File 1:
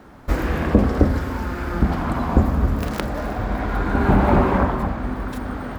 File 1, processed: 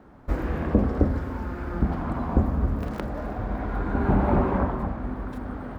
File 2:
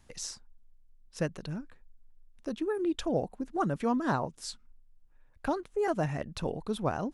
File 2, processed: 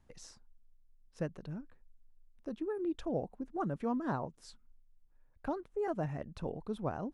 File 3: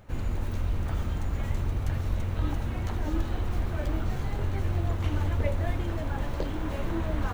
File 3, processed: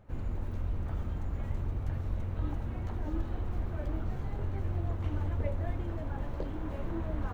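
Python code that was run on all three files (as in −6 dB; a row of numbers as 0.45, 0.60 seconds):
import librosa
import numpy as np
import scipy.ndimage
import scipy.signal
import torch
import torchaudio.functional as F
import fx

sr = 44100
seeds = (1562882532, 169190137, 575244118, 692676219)

y = fx.high_shelf(x, sr, hz=2100.0, db=-11.5)
y = y * librosa.db_to_amplitude(-5.0)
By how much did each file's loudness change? −5.5, −5.5, −5.0 LU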